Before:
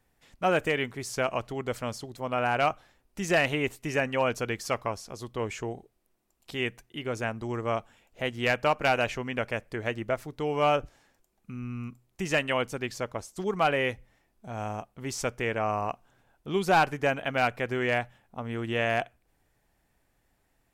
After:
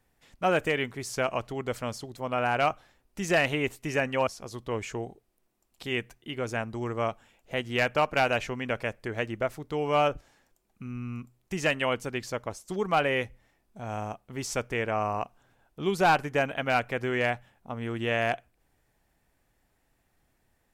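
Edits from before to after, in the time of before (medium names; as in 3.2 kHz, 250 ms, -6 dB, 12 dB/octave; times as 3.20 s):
4.27–4.95 s: delete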